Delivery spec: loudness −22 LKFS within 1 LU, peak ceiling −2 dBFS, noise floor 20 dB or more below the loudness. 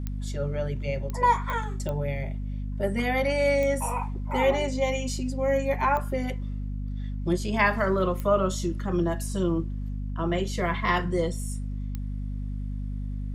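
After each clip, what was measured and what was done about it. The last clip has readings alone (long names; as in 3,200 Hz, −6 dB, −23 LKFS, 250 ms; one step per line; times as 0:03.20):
number of clicks 8; mains hum 50 Hz; hum harmonics up to 250 Hz; level of the hum −29 dBFS; integrated loudness −27.5 LKFS; sample peak −9.5 dBFS; target loudness −22.0 LKFS
→ click removal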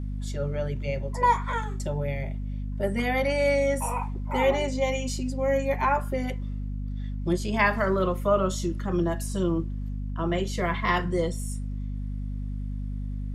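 number of clicks 0; mains hum 50 Hz; hum harmonics up to 250 Hz; level of the hum −29 dBFS
→ hum removal 50 Hz, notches 5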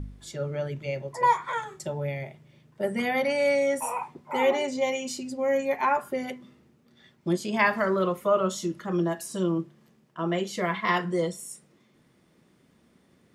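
mains hum none found; integrated loudness −27.5 LKFS; sample peak −9.5 dBFS; target loudness −22.0 LKFS
→ level +5.5 dB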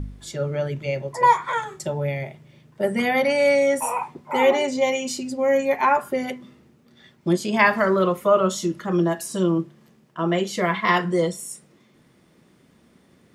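integrated loudness −22.0 LKFS; sample peak −4.0 dBFS; background noise floor −58 dBFS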